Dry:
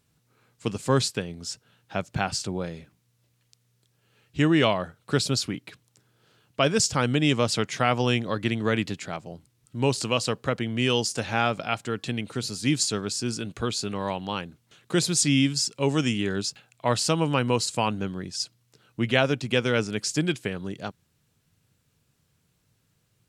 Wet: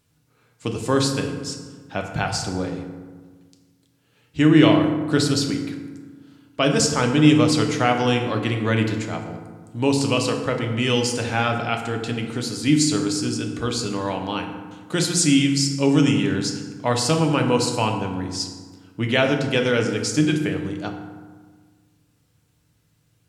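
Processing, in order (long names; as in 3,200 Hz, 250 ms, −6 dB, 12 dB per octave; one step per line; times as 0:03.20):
feedback delay network reverb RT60 1.5 s, low-frequency decay 1.3×, high-frequency decay 0.5×, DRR 2.5 dB
level +1.5 dB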